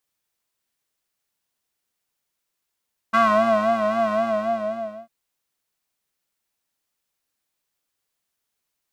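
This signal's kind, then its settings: synth patch with vibrato A3, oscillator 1 square, interval +19 st, detune 18 cents, noise -15.5 dB, filter bandpass, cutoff 630 Hz, Q 3, filter envelope 1 oct, attack 16 ms, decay 0.63 s, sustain -5.5 dB, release 0.97 s, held 0.98 s, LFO 3.8 Hz, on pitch 74 cents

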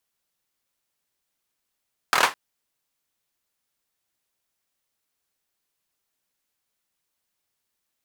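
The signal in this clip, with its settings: hand clap length 0.21 s, bursts 5, apart 25 ms, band 1.1 kHz, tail 0.21 s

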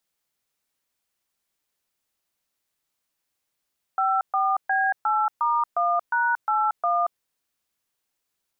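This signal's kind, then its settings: DTMF "54B8*1#81", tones 230 ms, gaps 127 ms, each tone -22 dBFS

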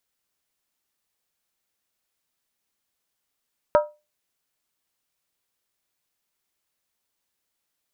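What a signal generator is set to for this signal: skin hit, lowest mode 598 Hz, decay 0.26 s, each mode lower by 5.5 dB, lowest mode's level -10.5 dB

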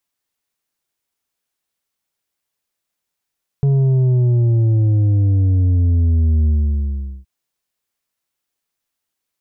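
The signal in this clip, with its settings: sub drop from 140 Hz, over 3.62 s, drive 6 dB, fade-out 0.78 s, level -12 dB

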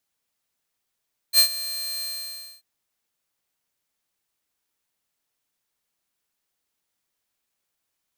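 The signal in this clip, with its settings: ADSR saw 4.17 kHz, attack 59 ms, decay 88 ms, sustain -17 dB, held 0.69 s, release 598 ms -8.5 dBFS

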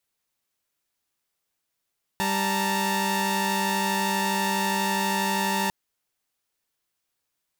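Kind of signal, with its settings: chord G3/A5/A#5 saw, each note -25 dBFS 3.50 s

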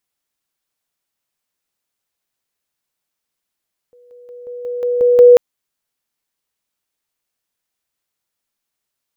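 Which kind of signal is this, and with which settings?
level ladder 488 Hz -44.5 dBFS, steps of 6 dB, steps 8, 0.18 s 0.00 s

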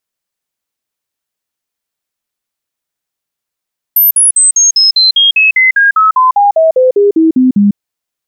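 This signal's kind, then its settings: stepped sine 13 kHz down, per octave 3, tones 19, 0.15 s, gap 0.05 s -4 dBFS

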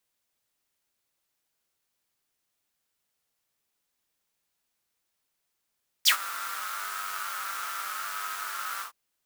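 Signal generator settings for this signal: synth patch with pulse-width modulation G2, noise -2 dB, filter highpass, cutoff 1.1 kHz, Q 8, filter envelope 2.5 oct, filter decay 0.07 s, filter sustain 10%, attack 23 ms, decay 0.09 s, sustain -17 dB, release 0.11 s, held 2.76 s, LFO 0.78 Hz, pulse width 41%, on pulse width 7%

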